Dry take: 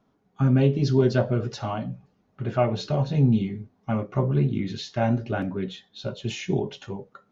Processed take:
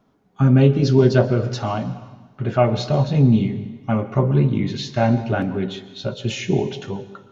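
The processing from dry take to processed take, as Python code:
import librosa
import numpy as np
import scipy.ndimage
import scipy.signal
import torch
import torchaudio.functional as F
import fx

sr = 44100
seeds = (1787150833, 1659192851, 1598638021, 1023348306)

y = fx.rev_plate(x, sr, seeds[0], rt60_s=1.3, hf_ratio=0.95, predelay_ms=110, drr_db=13.5)
y = F.gain(torch.from_numpy(y), 5.5).numpy()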